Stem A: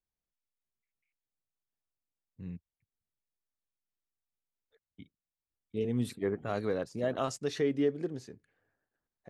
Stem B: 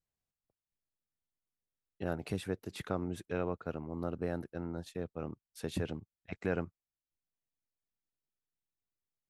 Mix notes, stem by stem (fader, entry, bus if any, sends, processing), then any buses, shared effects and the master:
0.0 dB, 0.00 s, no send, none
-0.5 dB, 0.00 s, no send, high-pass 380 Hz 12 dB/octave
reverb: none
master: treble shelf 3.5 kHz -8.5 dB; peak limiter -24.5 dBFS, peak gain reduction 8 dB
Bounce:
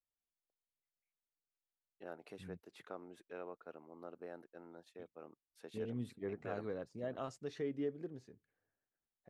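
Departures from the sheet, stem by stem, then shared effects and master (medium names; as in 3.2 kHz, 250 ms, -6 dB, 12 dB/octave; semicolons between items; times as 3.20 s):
stem A 0.0 dB -> -10.0 dB; stem B -0.5 dB -> -9.5 dB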